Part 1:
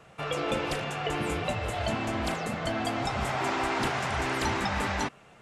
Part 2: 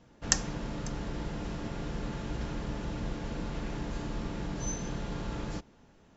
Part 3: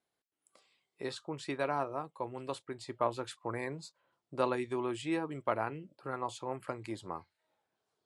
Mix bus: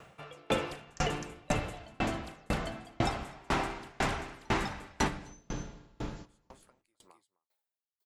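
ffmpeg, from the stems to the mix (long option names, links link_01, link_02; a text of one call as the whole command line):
ffmpeg -i stem1.wav -i stem2.wav -i stem3.wav -filter_complex "[0:a]asoftclip=type=hard:threshold=-20.5dB,volume=3dB,asplit=2[link_01][link_02];[link_02]volume=-9.5dB[link_03];[1:a]adelay=650,volume=2.5dB,asplit=2[link_04][link_05];[link_05]volume=-11dB[link_06];[2:a]aemphasis=mode=production:type=riaa,acompressor=threshold=-42dB:ratio=5,volume=-6.5dB,asplit=3[link_07][link_08][link_09];[link_07]atrim=end=1.28,asetpts=PTS-STARTPTS,afade=type=out:start_time=1.276:duration=0.004:curve=hsin[link_10];[link_08]atrim=start=1.28:end=2.78,asetpts=PTS-STARTPTS,volume=0[link_11];[link_09]atrim=start=2.78,asetpts=PTS-STARTPTS,afade=type=in:duration=0.004:curve=hsin[link_12];[link_10][link_11][link_12]concat=n=3:v=0:a=1,asplit=2[link_13][link_14];[link_14]volume=-7dB[link_15];[link_03][link_06][link_15]amix=inputs=3:normalize=0,aecho=0:1:257:1[link_16];[link_01][link_04][link_13][link_16]amix=inputs=4:normalize=0,aeval=exprs='val(0)*pow(10,-34*if(lt(mod(2*n/s,1),2*abs(2)/1000),1-mod(2*n/s,1)/(2*abs(2)/1000),(mod(2*n/s,1)-2*abs(2)/1000)/(1-2*abs(2)/1000))/20)':channel_layout=same" out.wav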